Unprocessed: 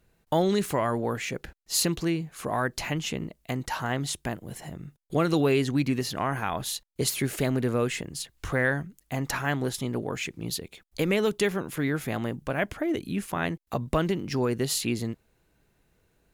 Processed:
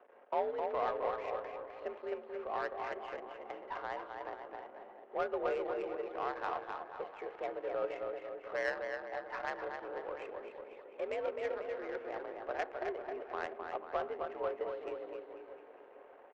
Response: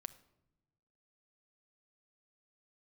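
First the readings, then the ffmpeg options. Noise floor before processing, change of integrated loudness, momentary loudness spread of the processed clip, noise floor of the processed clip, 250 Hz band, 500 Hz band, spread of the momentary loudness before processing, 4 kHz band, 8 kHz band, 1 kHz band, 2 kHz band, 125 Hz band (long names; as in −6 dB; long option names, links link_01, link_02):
−70 dBFS, −11.5 dB, 12 LU, −57 dBFS, −22.0 dB, −7.5 dB, 10 LU, −22.5 dB, below −35 dB, −5.5 dB, −11.5 dB, below −30 dB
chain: -filter_complex "[0:a]aeval=exprs='val(0)+0.5*0.0211*sgn(val(0))':channel_layout=same,aecho=1:1:260|494|704.6|894.1|1065:0.631|0.398|0.251|0.158|0.1[link_01];[1:a]atrim=start_sample=2205[link_02];[link_01][link_02]afir=irnorm=-1:irlink=0,highpass=frequency=400:width_type=q:width=0.5412,highpass=frequency=400:width_type=q:width=1.307,lowpass=frequency=3100:width_type=q:width=0.5176,lowpass=frequency=3100:width_type=q:width=0.7071,lowpass=frequency=3100:width_type=q:width=1.932,afreqshift=61,adynamicsmooth=sensitivity=1:basefreq=810,volume=-4dB"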